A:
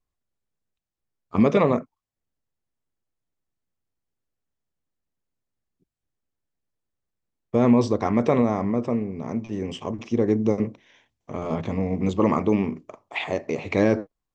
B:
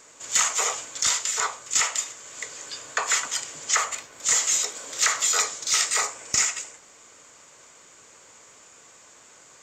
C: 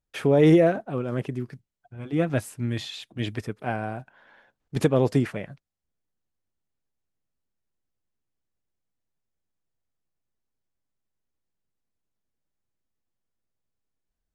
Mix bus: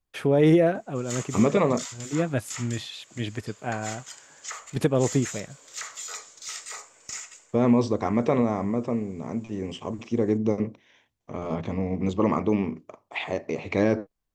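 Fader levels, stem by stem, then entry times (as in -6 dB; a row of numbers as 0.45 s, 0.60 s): -2.5 dB, -14.5 dB, -1.5 dB; 0.00 s, 0.75 s, 0.00 s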